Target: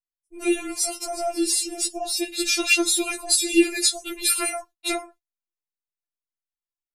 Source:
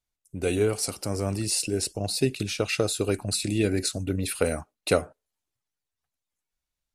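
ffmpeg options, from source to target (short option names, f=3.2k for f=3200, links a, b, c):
-filter_complex "[0:a]asettb=1/sr,asplit=3[a][b][c];[a]atrim=end=2.374[d];[b]atrim=start=2.37:end=4.52,asetpts=PTS-STARTPTS,afade=t=in:d=0.004:c=qsin,afade=t=out:st=2.146:d=0.004:c=qsin,highshelf=f=2k:g=10[e];[c]atrim=start=4.516[f];[d][e]acrossfade=d=0.004:c1=hsin:c2=qsin[g];[g][f]acrossfade=d=0.004:c1=qsin:c2=hsin,acompressor=threshold=-22dB:ratio=4,agate=range=-24dB:threshold=-47dB:ratio=16:detection=peak,afftfilt=real='re*4*eq(mod(b,16),0)':imag='im*4*eq(mod(b,16),0)':win_size=2048:overlap=0.75,volume=7.5dB"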